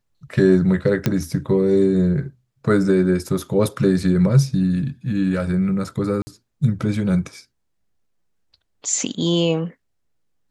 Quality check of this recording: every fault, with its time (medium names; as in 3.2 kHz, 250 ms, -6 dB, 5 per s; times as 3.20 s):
1.06 s: pop -5 dBFS
6.22–6.27 s: dropout 50 ms